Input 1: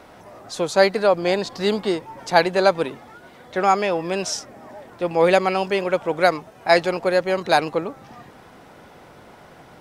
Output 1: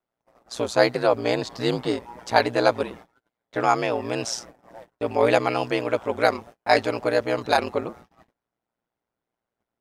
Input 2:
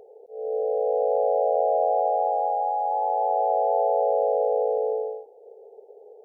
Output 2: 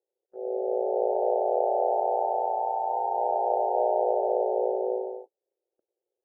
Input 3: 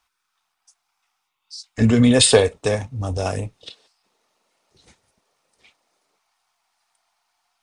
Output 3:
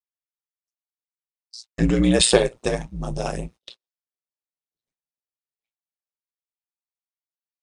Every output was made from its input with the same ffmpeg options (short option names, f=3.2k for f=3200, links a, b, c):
-af "aeval=exprs='val(0)*sin(2*PI*59*n/s)':c=same,agate=range=-37dB:threshold=-42dB:ratio=16:detection=peak"